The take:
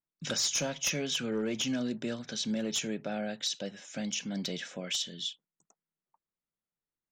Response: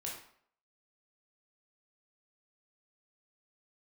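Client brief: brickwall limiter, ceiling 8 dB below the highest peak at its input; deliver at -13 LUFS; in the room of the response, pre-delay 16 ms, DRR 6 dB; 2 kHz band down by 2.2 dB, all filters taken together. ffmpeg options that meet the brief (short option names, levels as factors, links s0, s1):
-filter_complex "[0:a]equalizer=f=2000:t=o:g=-3,alimiter=level_in=1.88:limit=0.0631:level=0:latency=1,volume=0.531,asplit=2[s0][s1];[1:a]atrim=start_sample=2205,adelay=16[s2];[s1][s2]afir=irnorm=-1:irlink=0,volume=0.531[s3];[s0][s3]amix=inputs=2:normalize=0,volume=15.8"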